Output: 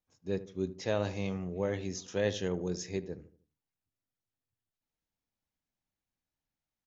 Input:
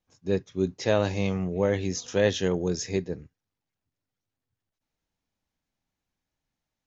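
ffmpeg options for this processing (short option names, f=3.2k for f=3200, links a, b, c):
-filter_complex "[0:a]asplit=2[a][b];[b]adelay=77,lowpass=f=1.1k:p=1,volume=-13.5dB,asplit=2[c][d];[d]adelay=77,lowpass=f=1.1k:p=1,volume=0.43,asplit=2[e][f];[f]adelay=77,lowpass=f=1.1k:p=1,volume=0.43,asplit=2[g][h];[h]adelay=77,lowpass=f=1.1k:p=1,volume=0.43[i];[a][c][e][g][i]amix=inputs=5:normalize=0,volume=-8dB"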